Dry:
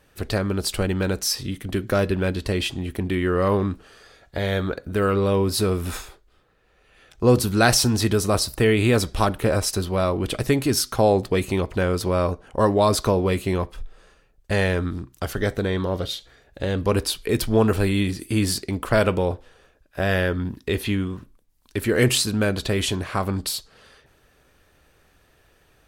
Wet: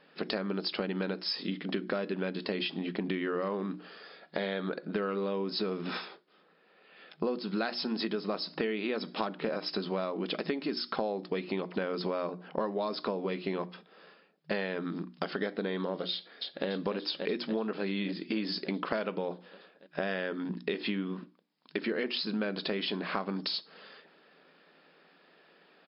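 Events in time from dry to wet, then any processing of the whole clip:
16.12–16.67 echo throw 0.29 s, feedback 75%, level -4 dB
whole clip: FFT band-pass 160–5300 Hz; notches 60/120/180/240/300/360 Hz; compressor 10:1, threshold -29 dBFS

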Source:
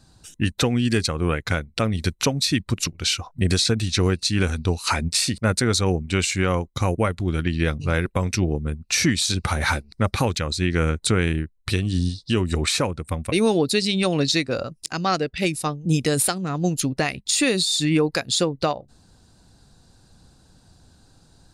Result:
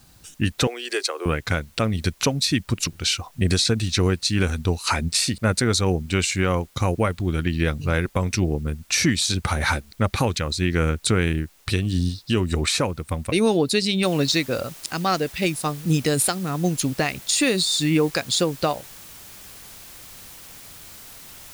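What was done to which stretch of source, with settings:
0.67–1.26 steep high-pass 360 Hz 48 dB/oct
14.03 noise floor step -57 dB -43 dB

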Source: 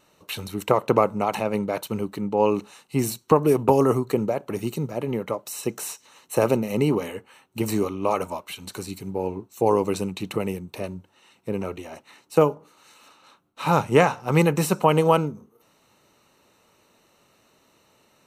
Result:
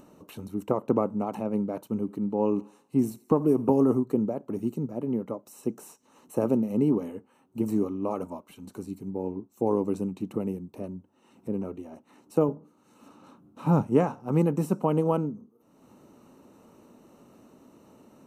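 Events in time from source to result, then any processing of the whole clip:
1.95–4.01 thinning echo 83 ms, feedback 56%, level -19 dB
12.48–13.83 bell 130 Hz +7 dB 2.3 oct
whole clip: graphic EQ 250/2000/4000/8000 Hz +11/-9/-11/-3 dB; upward compressor, threshold -33 dBFS; high shelf 12000 Hz -10 dB; gain -8.5 dB

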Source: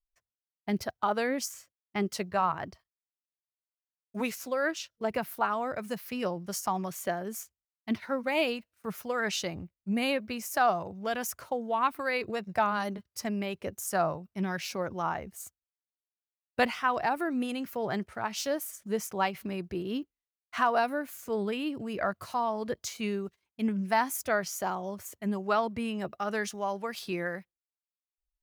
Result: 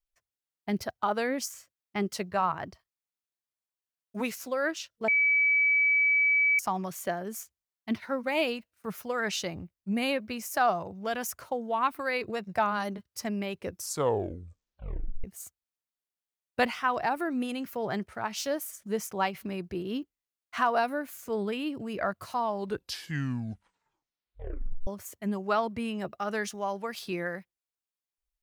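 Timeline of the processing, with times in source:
5.08–6.59 bleep 2290 Hz -20.5 dBFS
13.59 tape stop 1.65 s
22.4 tape stop 2.47 s

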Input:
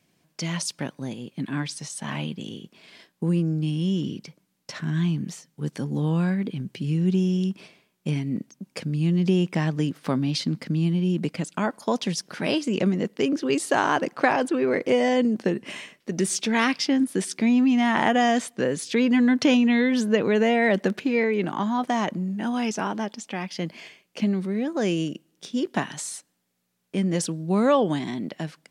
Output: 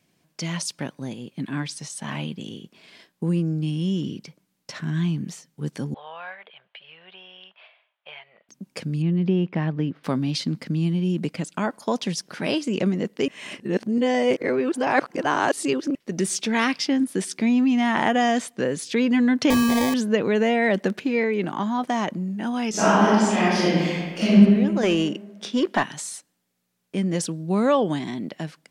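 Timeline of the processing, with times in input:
5.94–8.49 elliptic band-pass 630–3300 Hz
9.02–10.04 air absorption 320 m
13.28–15.95 reverse
19.5–19.94 sample-rate reducer 1400 Hz
22.7–24.33 reverb throw, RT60 1.6 s, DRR -11.5 dB
24.83–25.83 overdrive pedal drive 18 dB, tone 2200 Hz, clips at -8 dBFS

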